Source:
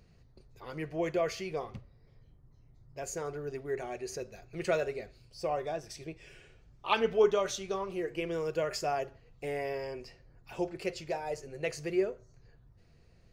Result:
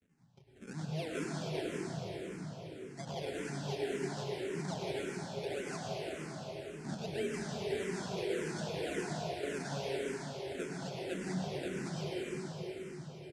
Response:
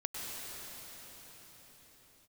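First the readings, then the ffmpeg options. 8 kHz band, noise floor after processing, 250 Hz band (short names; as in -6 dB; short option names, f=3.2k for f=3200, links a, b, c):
-2.5 dB, -52 dBFS, +0.5 dB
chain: -filter_complex "[0:a]agate=range=-33dB:threshold=-54dB:ratio=3:detection=peak,aecho=1:1:7.5:0.51,acompressor=threshold=-34dB:ratio=4,acrusher=samples=31:mix=1:aa=0.000001:lfo=1:lforange=31:lforate=1.9,asoftclip=type=tanh:threshold=-31dB,highpass=120,equalizer=f=190:t=q:w=4:g=8,equalizer=f=520:t=q:w=4:g=-4,equalizer=f=1.2k:t=q:w=4:g=-9,lowpass=f=9.3k:w=0.5412,lowpass=f=9.3k:w=1.3066[a];[1:a]atrim=start_sample=2205[b];[a][b]afir=irnorm=-1:irlink=0,asplit=2[c][d];[d]afreqshift=-1.8[e];[c][e]amix=inputs=2:normalize=1,volume=2.5dB"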